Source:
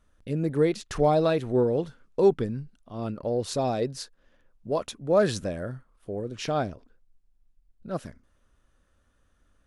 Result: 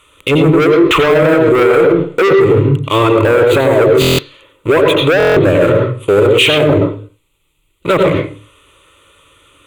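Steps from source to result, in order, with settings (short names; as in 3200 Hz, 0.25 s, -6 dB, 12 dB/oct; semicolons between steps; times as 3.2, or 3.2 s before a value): treble ducked by the level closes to 640 Hz, closed at -23.5 dBFS; HPF 170 Hz 6 dB/oct; bell 3300 Hz +7 dB 0.6 oct; sample leveller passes 2; fixed phaser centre 1100 Hz, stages 8; soft clip -24 dBFS, distortion -9 dB; reverb RT60 0.40 s, pre-delay 84 ms, DRR 5 dB; maximiser +33.5 dB; stuck buffer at 4/5.18, samples 1024, times 7; gain -1 dB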